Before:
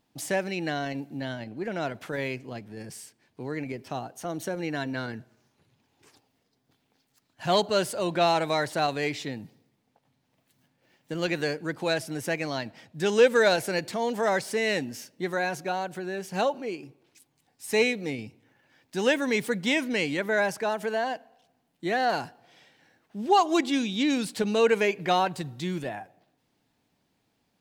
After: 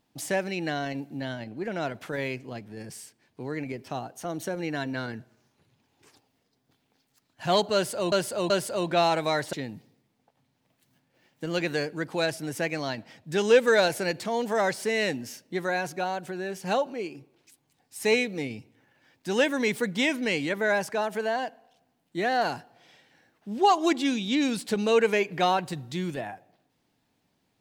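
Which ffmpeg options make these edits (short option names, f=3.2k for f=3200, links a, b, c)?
-filter_complex "[0:a]asplit=4[a][b][c][d];[a]atrim=end=8.122[e];[b]atrim=start=7.738:end=8.122[f];[c]atrim=start=7.738:end=8.772[g];[d]atrim=start=9.208[h];[e][f]acrossfade=d=0.004:c1=hsin:c2=hsin[i];[i][g]acrossfade=d=0.004:c1=hsin:c2=hsin[j];[j][h]acrossfade=d=0.004:c1=hsin:c2=hsin"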